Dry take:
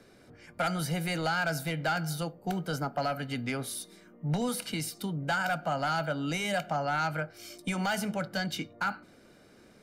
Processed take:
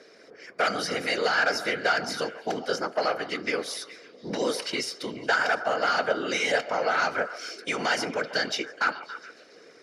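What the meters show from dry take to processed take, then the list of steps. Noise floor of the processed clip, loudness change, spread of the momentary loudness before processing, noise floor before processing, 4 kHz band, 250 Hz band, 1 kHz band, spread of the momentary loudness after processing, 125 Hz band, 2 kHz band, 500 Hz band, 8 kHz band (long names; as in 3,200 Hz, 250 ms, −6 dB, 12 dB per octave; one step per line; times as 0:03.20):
−53 dBFS, +5.0 dB, 6 LU, −58 dBFS, +7.0 dB, −2.0 dB, +4.0 dB, 11 LU, −12.5 dB, +7.5 dB, +7.0 dB, +2.5 dB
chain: random phases in short frames
loudspeaker in its box 370–9,100 Hz, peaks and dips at 460 Hz +8 dB, 850 Hz −5 dB, 1,900 Hz +5 dB, 5,300 Hz +8 dB, 8,300 Hz −9 dB
echo through a band-pass that steps 140 ms, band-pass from 830 Hz, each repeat 0.7 octaves, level −11 dB
level +5 dB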